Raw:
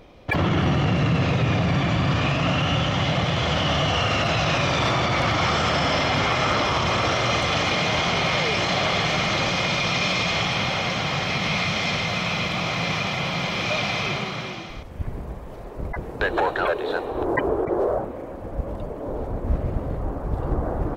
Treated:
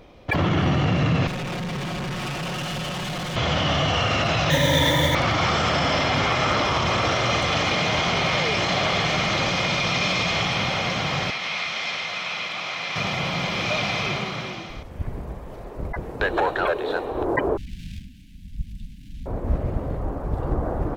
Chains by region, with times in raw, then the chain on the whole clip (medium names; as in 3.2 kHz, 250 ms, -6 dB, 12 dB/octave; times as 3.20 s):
1.27–3.36 s: comb filter that takes the minimum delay 5.5 ms + overload inside the chain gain 27 dB
4.50–5.15 s: rippled EQ curve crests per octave 1.1, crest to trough 16 dB + modulation noise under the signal 20 dB + Butterworth band-stop 1.1 kHz, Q 4.2
11.30–12.96 s: high-pass 1.3 kHz 6 dB/octave + treble shelf 6.8 kHz -9.5 dB
17.57–19.26 s: comb filter that takes the minimum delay 4 ms + inverse Chebyshev band-stop 440–1200 Hz, stop band 60 dB + small resonant body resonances 630/1600 Hz, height 7 dB, ringing for 20 ms
whole clip: none